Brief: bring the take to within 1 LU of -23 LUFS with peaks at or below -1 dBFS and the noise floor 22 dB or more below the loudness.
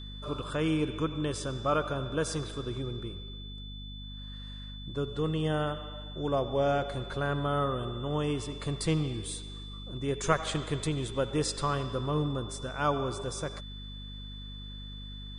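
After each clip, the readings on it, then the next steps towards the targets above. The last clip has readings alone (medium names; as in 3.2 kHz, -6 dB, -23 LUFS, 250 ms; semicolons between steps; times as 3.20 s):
hum 50 Hz; highest harmonic 250 Hz; hum level -41 dBFS; steady tone 3.5 kHz; tone level -46 dBFS; loudness -32.0 LUFS; peak level -12.0 dBFS; loudness target -23.0 LUFS
-> de-hum 50 Hz, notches 5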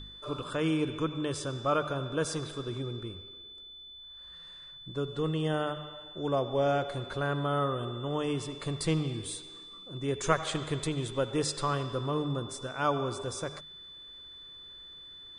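hum not found; steady tone 3.5 kHz; tone level -46 dBFS
-> band-stop 3.5 kHz, Q 30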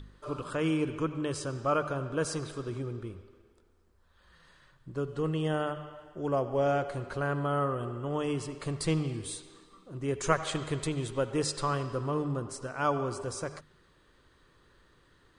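steady tone not found; loudness -32.5 LUFS; peak level -11.0 dBFS; loudness target -23.0 LUFS
-> trim +9.5 dB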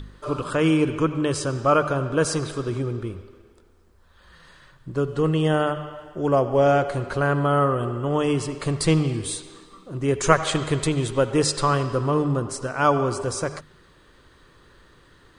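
loudness -23.0 LUFS; peak level -1.5 dBFS; noise floor -55 dBFS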